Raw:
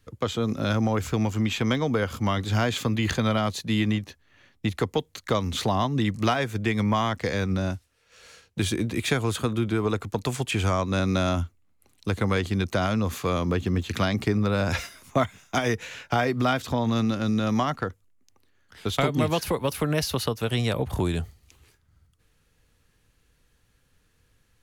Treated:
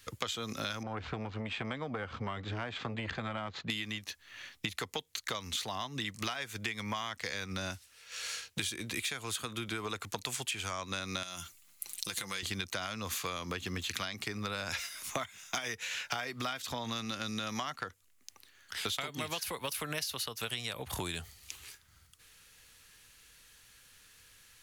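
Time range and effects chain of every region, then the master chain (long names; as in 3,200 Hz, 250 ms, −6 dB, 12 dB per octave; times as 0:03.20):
0:00.83–0:03.70: bad sample-rate conversion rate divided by 4×, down none, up hold + head-to-tape spacing loss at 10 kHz 42 dB + saturating transformer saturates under 310 Hz
0:11.23–0:12.43: high-shelf EQ 3,400 Hz +12 dB + comb filter 5.8 ms, depth 45% + downward compressor 16 to 1, threshold −31 dBFS
whole clip: tilt shelving filter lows −9.5 dB; downward compressor 12 to 1, threshold −38 dBFS; level +4.5 dB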